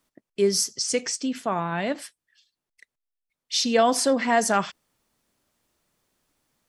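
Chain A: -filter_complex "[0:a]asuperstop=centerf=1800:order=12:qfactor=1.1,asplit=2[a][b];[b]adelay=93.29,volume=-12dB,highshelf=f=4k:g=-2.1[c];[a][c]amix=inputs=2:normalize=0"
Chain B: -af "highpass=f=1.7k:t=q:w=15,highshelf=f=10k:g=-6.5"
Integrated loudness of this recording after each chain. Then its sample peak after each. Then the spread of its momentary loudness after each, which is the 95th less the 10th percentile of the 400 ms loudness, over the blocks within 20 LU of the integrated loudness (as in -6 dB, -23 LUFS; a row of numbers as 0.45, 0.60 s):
-24.0, -19.5 LUFS; -8.0, -3.5 dBFS; 13, 16 LU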